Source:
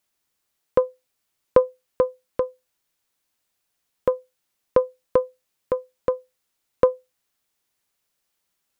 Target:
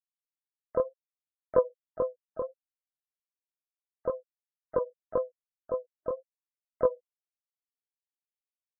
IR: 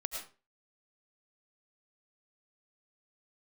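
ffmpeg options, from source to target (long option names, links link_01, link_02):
-filter_complex "[0:a]afftfilt=real='re*gte(hypot(re,im),0.0501)':imag='im*gte(hypot(re,im),0.0501)':win_size=1024:overlap=0.75,flanger=delay=19.5:depth=6:speed=1.9,asplit=2[link_01][link_02];[link_02]asetrate=55563,aresample=44100,atempo=0.793701,volume=-15dB[link_03];[link_01][link_03]amix=inputs=2:normalize=0,volume=-5.5dB"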